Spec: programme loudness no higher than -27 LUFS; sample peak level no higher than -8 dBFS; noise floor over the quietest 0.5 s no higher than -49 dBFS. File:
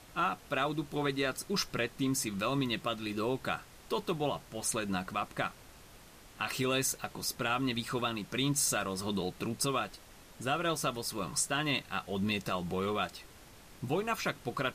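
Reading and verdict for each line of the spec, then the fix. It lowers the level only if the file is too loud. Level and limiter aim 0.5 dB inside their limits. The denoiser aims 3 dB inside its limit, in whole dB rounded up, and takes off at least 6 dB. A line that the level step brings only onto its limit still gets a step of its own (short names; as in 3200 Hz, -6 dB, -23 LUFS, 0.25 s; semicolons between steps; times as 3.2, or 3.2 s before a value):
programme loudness -33.5 LUFS: OK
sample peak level -17.5 dBFS: OK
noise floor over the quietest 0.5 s -55 dBFS: OK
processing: none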